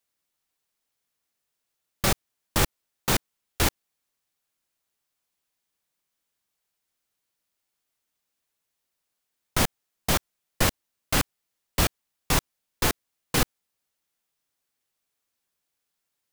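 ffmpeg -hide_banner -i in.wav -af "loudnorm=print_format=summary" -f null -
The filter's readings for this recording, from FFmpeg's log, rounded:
Input Integrated:    -27.2 LUFS
Input True Peak:      -7.4 dBTP
Input LRA:             7.6 LU
Input Threshold:     -37.6 LUFS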